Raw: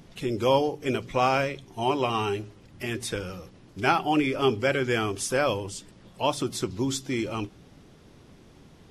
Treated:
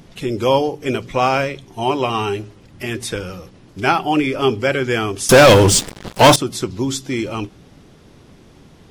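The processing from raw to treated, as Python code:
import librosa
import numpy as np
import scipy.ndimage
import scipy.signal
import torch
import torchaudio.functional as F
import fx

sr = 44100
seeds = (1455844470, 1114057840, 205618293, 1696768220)

y = fx.leveller(x, sr, passes=5, at=(5.29, 6.36))
y = y * librosa.db_to_amplitude(6.5)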